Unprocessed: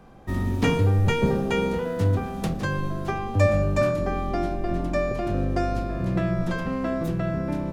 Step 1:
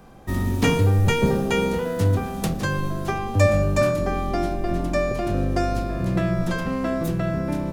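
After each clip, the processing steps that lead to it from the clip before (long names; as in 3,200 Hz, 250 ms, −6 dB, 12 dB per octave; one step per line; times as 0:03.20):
high-shelf EQ 5,700 Hz +9.5 dB
level +2 dB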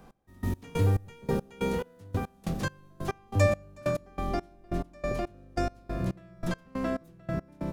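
gate pattern "x...x..x" 140 BPM −24 dB
level −5.5 dB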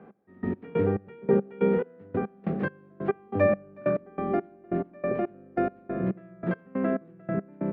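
loudspeaker in its box 190–2,100 Hz, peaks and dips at 200 Hz +7 dB, 410 Hz +8 dB, 1,000 Hz −6 dB
level +3 dB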